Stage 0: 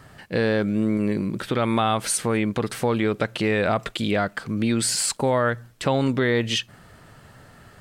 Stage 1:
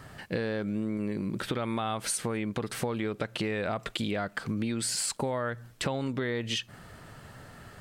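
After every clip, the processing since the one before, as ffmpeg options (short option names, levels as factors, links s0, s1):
-af "acompressor=threshold=0.0398:ratio=6"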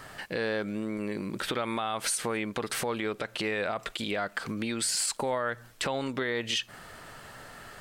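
-af "equalizer=f=100:w=0.37:g=-12,alimiter=level_in=1.12:limit=0.0631:level=0:latency=1:release=56,volume=0.891,volume=1.88"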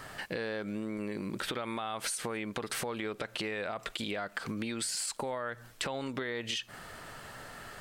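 -af "acompressor=threshold=0.0251:ratio=6"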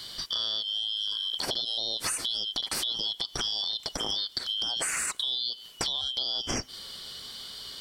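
-af "afftfilt=real='real(if(lt(b,272),68*(eq(floor(b/68),0)*2+eq(floor(b/68),1)*3+eq(floor(b/68),2)*0+eq(floor(b/68),3)*1)+mod(b,68),b),0)':imag='imag(if(lt(b,272),68*(eq(floor(b/68),0)*2+eq(floor(b/68),1)*3+eq(floor(b/68),2)*0+eq(floor(b/68),3)*1)+mod(b,68),b),0)':win_size=2048:overlap=0.75,equalizer=f=370:t=o:w=0.25:g=2.5,volume=1.78"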